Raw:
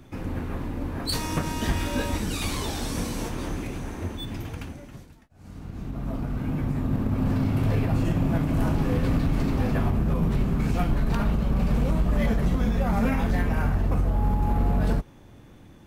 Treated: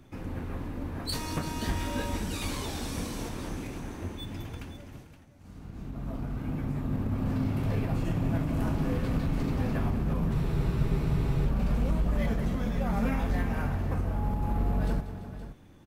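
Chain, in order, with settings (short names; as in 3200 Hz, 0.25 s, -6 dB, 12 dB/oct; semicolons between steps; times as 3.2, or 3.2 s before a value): tapped delay 0.188/0.339/0.521 s -13.5/-15.5/-13 dB; spectral freeze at 10.35, 1.11 s; gain -5.5 dB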